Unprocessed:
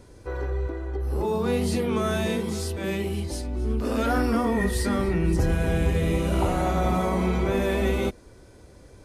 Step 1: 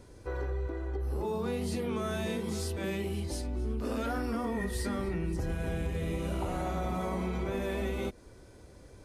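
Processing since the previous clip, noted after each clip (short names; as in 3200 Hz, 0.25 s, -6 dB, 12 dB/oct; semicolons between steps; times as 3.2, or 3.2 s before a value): compressor, threshold -26 dBFS, peak gain reduction 8.5 dB; gain -3.5 dB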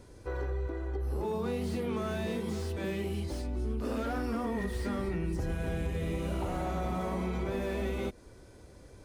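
slew limiter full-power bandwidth 22 Hz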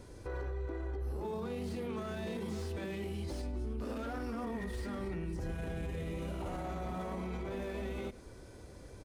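self-modulated delay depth 0.058 ms; limiter -33 dBFS, peak gain reduction 11 dB; echo 0.102 s -19 dB; gain +1.5 dB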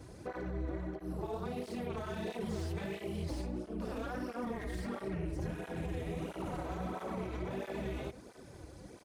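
AM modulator 250 Hz, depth 80%; tape flanging out of phase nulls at 1.5 Hz, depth 5.6 ms; gain +7 dB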